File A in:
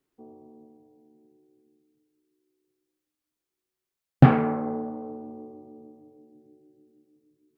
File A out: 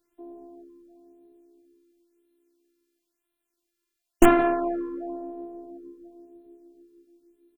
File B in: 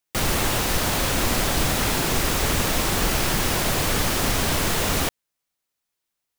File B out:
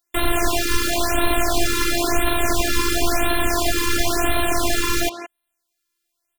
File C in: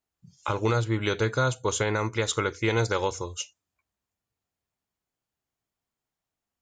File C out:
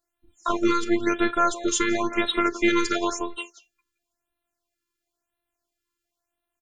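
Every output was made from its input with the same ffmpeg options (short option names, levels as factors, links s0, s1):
-filter_complex "[0:a]afftfilt=real='hypot(re,im)*cos(PI*b)':imag='0':win_size=512:overlap=0.75,asplit=2[s0][s1];[s1]adelay=170,highpass=300,lowpass=3400,asoftclip=type=hard:threshold=0.178,volume=0.282[s2];[s0][s2]amix=inputs=2:normalize=0,asplit=2[s3][s4];[s4]aeval=exprs='(mod(3.35*val(0)+1,2)-1)/3.35':c=same,volume=0.398[s5];[s3][s5]amix=inputs=2:normalize=0,afftfilt=real='re*(1-between(b*sr/1024,680*pow(6200/680,0.5+0.5*sin(2*PI*0.97*pts/sr))/1.41,680*pow(6200/680,0.5+0.5*sin(2*PI*0.97*pts/sr))*1.41))':imag='im*(1-between(b*sr/1024,680*pow(6200/680,0.5+0.5*sin(2*PI*0.97*pts/sr))/1.41,680*pow(6200/680,0.5+0.5*sin(2*PI*0.97*pts/sr))*1.41))':win_size=1024:overlap=0.75,volume=1.88"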